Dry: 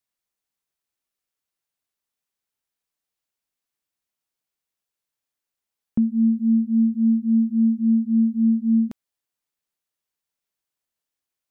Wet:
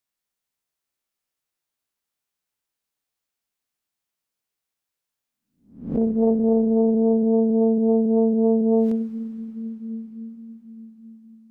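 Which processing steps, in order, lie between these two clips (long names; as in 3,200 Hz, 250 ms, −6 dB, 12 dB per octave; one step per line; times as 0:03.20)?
peak hold with a rise ahead of every peak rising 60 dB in 0.48 s
convolution reverb RT60 5.4 s, pre-delay 36 ms, DRR 4 dB
highs frequency-modulated by the lows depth 0.94 ms
level −1.5 dB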